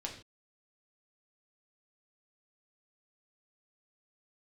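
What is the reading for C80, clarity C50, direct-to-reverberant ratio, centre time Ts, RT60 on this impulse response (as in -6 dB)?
11.5 dB, 8.5 dB, -0.5 dB, 20 ms, not exponential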